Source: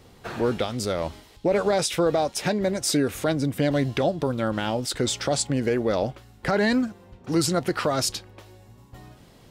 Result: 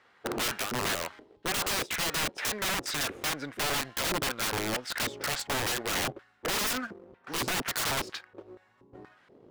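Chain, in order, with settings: LFO band-pass square 2.1 Hz 390–1600 Hz; sample leveller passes 1; wrapped overs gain 29.5 dB; gain +5 dB

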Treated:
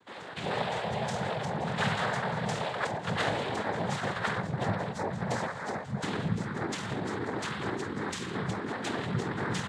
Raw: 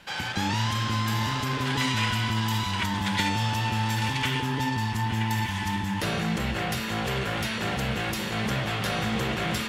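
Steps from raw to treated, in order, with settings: spectral noise reduction 10 dB; pitch shift -11 st; noise vocoder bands 6

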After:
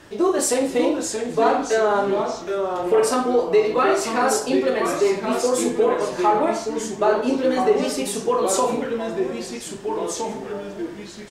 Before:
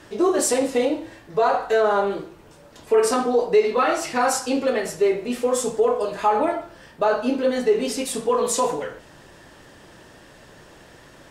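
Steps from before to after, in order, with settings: echoes that change speed 0.563 s, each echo -2 st, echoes 3, each echo -6 dB; doubler 44 ms -12.5 dB

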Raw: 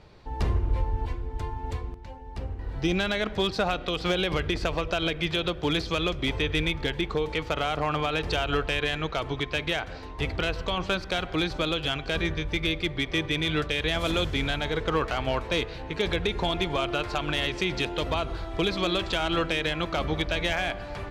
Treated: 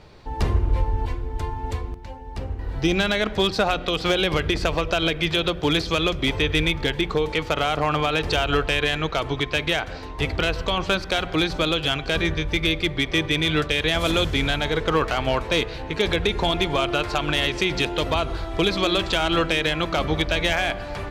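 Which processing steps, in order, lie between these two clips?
high shelf 7500 Hz +4.5 dB; notches 60/120/180 Hz; gain +5 dB

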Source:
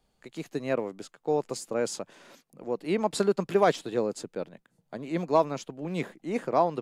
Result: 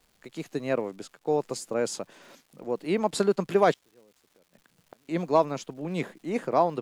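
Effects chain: 3.73–5.09 flipped gate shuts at -33 dBFS, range -32 dB; crackle 410/s -53 dBFS; gain +1 dB

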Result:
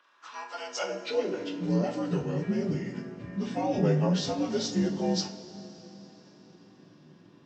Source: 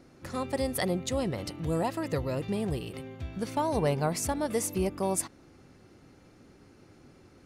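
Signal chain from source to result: inharmonic rescaling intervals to 84%; high-pass sweep 1200 Hz -> 170 Hz, 0.38–1.87; two-slope reverb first 0.29 s, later 4.1 s, from -20 dB, DRR 2 dB; gain -1.5 dB

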